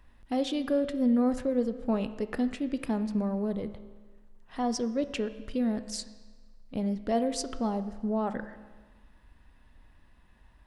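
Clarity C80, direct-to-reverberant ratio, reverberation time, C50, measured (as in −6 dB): 14.0 dB, 10.5 dB, 1.4 s, 12.5 dB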